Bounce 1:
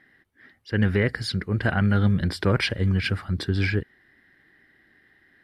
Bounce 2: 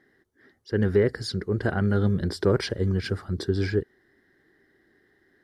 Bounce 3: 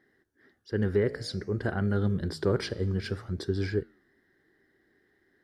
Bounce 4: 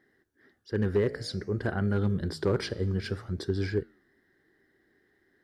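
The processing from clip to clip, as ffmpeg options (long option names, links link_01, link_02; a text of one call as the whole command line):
ffmpeg -i in.wav -af "equalizer=frequency=400:width_type=o:width=0.67:gain=10,equalizer=frequency=2500:width_type=o:width=0.67:gain=-11,equalizer=frequency=6300:width_type=o:width=0.67:gain=6,volume=-3.5dB" out.wav
ffmpeg -i in.wav -af "flanger=delay=9.3:depth=9.6:regen=-87:speed=0.55:shape=sinusoidal" out.wav
ffmpeg -i in.wav -af "asoftclip=type=hard:threshold=-17.5dB" out.wav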